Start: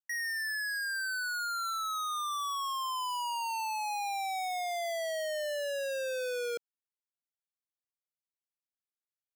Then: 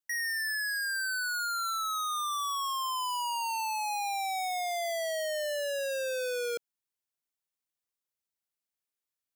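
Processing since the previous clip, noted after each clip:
high-shelf EQ 5,500 Hz +4 dB
level +1.5 dB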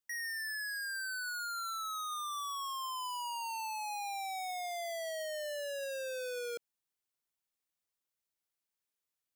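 brickwall limiter −35.5 dBFS, peak gain reduction 6.5 dB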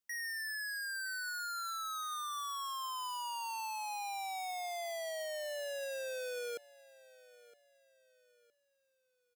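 repeating echo 964 ms, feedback 34%, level −20.5 dB
level −1 dB

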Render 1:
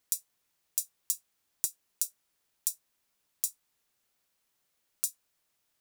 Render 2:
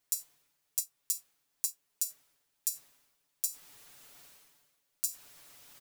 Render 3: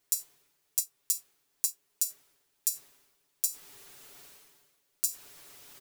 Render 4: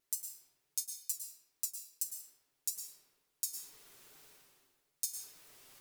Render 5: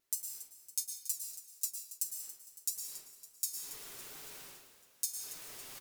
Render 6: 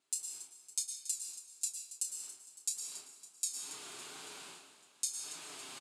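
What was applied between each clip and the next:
comb filter 7 ms, depth 96%; reversed playback; upward compression, threshold −33 dBFS; reversed playback; level −4 dB
parametric band 380 Hz +10.5 dB 0.26 octaves; level +3.5 dB
tape wow and flutter 150 cents; on a send at −4 dB: convolution reverb RT60 1.0 s, pre-delay 101 ms; on the sum: level −7.5 dB
reversed playback; upward compression, threshold −40 dBFS; reversed playback; echo with shifted repeats 279 ms, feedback 57%, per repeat +47 Hz, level −14 dB; level +1 dB
loudspeaker in its box 210–8,700 Hz, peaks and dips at 510 Hz −10 dB, 1,900 Hz −7 dB, 5,700 Hz −8 dB; double-tracking delay 29 ms −8 dB; level +5 dB

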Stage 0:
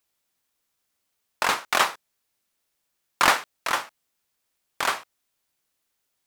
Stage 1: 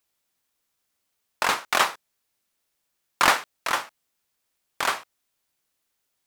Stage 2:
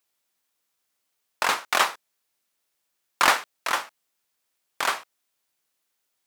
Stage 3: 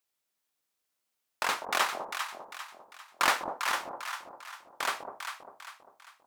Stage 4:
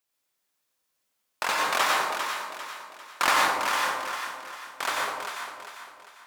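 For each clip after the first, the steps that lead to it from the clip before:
no processing that can be heard
low-shelf EQ 170 Hz −9.5 dB
delay that swaps between a low-pass and a high-pass 199 ms, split 840 Hz, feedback 64%, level −3 dB; level −6.5 dB
dense smooth reverb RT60 0.92 s, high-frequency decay 0.7×, pre-delay 80 ms, DRR −2 dB; level +1.5 dB

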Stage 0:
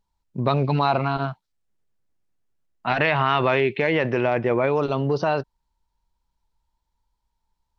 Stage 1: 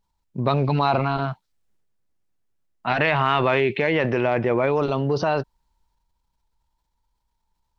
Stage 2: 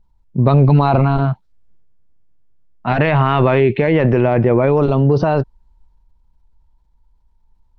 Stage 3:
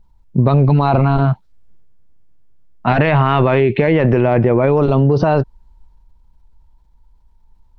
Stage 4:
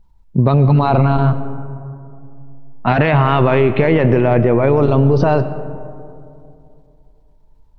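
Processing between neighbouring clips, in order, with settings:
transient designer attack 0 dB, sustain +5 dB
spectral tilt −3 dB per octave; level +3.5 dB
downward compressor, threshold −15 dBFS, peak gain reduction 7.5 dB; level +5.5 dB
convolution reverb RT60 2.6 s, pre-delay 75 ms, DRR 12 dB

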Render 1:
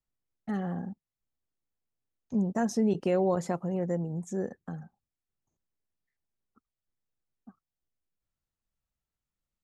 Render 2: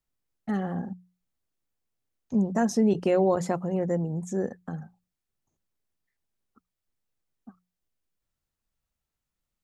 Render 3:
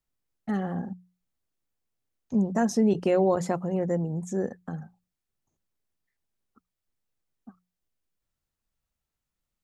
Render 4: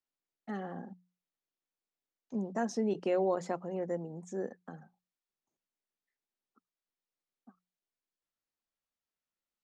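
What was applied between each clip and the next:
mains-hum notches 60/120/180 Hz; level +4 dB
no processing that can be heard
three-way crossover with the lows and the highs turned down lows −17 dB, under 210 Hz, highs −23 dB, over 7,600 Hz; level −6.5 dB

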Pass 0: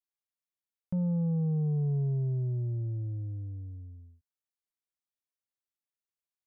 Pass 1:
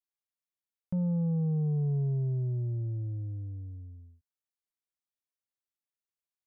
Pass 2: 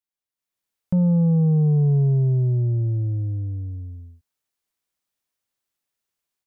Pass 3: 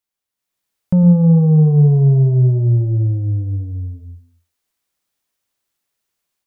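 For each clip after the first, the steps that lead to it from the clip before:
no processing that can be heard
automatic gain control gain up to 11 dB
convolution reverb RT60 0.40 s, pre-delay 98 ms, DRR 10 dB; level +6.5 dB

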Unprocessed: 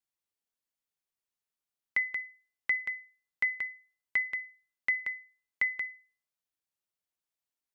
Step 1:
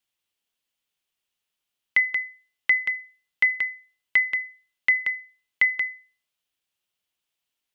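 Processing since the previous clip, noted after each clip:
parametric band 3,000 Hz +9.5 dB 0.75 octaves
level +6 dB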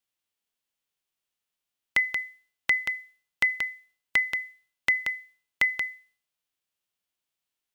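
spectral envelope flattened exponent 0.6
level −3.5 dB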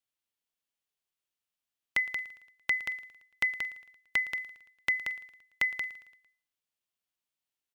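repeating echo 113 ms, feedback 53%, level −19 dB
level −5 dB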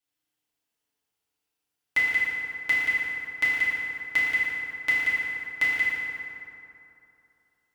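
feedback delay network reverb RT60 2.9 s, high-frequency decay 0.5×, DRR −9 dB
level −1.5 dB

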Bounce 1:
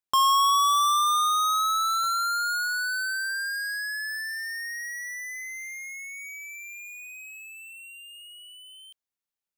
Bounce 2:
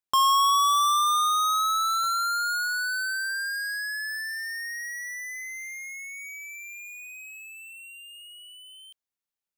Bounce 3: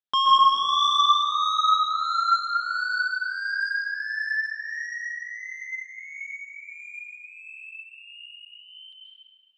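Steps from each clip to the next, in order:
no processing that can be heard
shaped tremolo triangle 1.5 Hz, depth 100%; loudspeaker in its box 140–5,000 Hz, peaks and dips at 230 Hz +5 dB, 1,700 Hz +4 dB, 3,400 Hz +8 dB; convolution reverb RT60 2.6 s, pre-delay 123 ms, DRR −5 dB; level −2 dB

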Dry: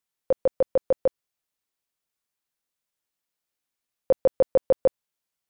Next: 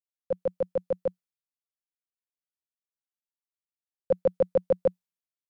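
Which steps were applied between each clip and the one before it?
parametric band 180 Hz +13 dB 0.3 octaves
multiband upward and downward expander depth 100%
level −5 dB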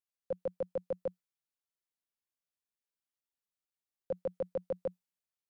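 brickwall limiter −25 dBFS, peak gain reduction 11.5 dB
level −1.5 dB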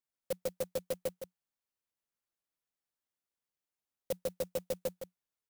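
single-tap delay 162 ms −9 dB
converter with an unsteady clock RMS 0.091 ms

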